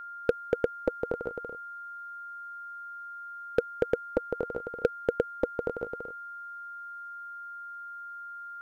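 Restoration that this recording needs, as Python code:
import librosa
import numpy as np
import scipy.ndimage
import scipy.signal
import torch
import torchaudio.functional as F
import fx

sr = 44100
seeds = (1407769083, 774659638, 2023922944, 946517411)

y = fx.fix_declip(x, sr, threshold_db=-13.5)
y = fx.notch(y, sr, hz=1400.0, q=30.0)
y = fx.fix_echo_inverse(y, sr, delay_ms=238, level_db=-3.5)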